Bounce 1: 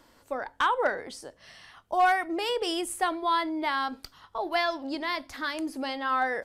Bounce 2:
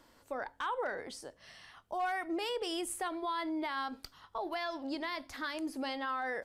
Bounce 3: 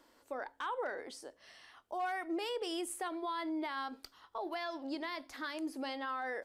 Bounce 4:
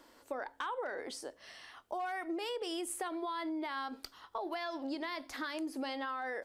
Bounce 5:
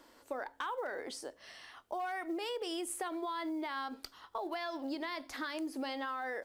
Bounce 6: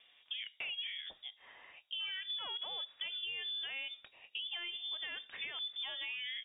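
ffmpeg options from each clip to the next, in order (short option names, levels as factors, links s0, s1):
-af "alimiter=limit=0.0631:level=0:latency=1:release=84,volume=0.631"
-af "lowshelf=f=220:t=q:w=1.5:g=-8,volume=0.708"
-af "acompressor=threshold=0.01:ratio=6,volume=1.78"
-af "acrusher=bits=9:mode=log:mix=0:aa=0.000001"
-af "lowpass=f=3200:t=q:w=0.5098,lowpass=f=3200:t=q:w=0.6013,lowpass=f=3200:t=q:w=0.9,lowpass=f=3200:t=q:w=2.563,afreqshift=-3800,volume=0.708"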